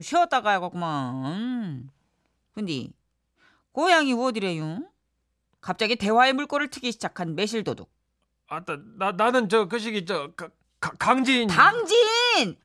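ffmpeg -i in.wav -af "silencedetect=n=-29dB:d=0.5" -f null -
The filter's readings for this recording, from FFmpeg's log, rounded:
silence_start: 1.78
silence_end: 2.57 | silence_duration: 0.79
silence_start: 2.86
silence_end: 3.77 | silence_duration: 0.91
silence_start: 4.81
silence_end: 5.68 | silence_duration: 0.87
silence_start: 7.74
silence_end: 8.52 | silence_duration: 0.78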